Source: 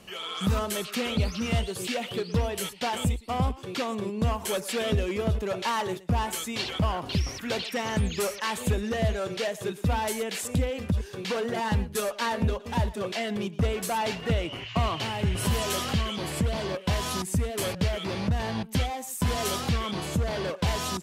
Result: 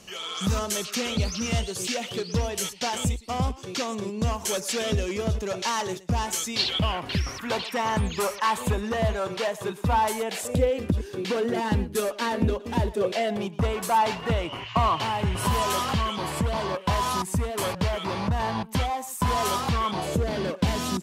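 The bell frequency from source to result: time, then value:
bell +10.5 dB
6.42 s 6100 Hz
7.47 s 1000 Hz
10.12 s 1000 Hz
10.94 s 310 Hz
12.72 s 310 Hz
13.64 s 1000 Hz
19.91 s 1000 Hz
20.35 s 240 Hz

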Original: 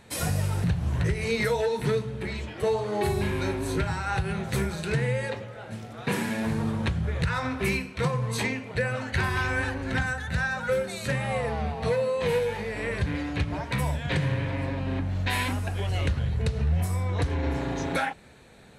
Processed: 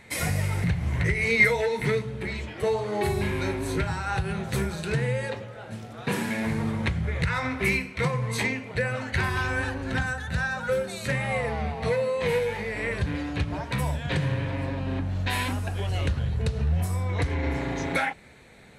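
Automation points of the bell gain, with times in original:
bell 2100 Hz 0.26 oct
+15 dB
from 2.02 s +5 dB
from 3.86 s -1 dB
from 6.3 s +9.5 dB
from 8.43 s +3.5 dB
from 9.3 s -3.5 dB
from 11.05 s +6.5 dB
from 12.93 s -2.5 dB
from 17.1 s +9 dB

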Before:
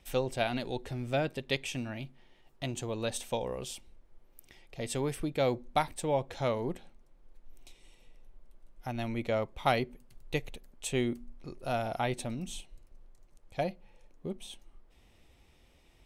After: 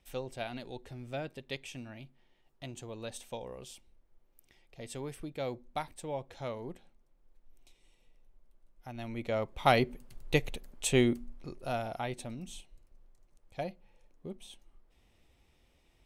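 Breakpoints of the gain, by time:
8.88 s -8 dB
9.87 s +5 dB
11 s +5 dB
12.03 s -5 dB

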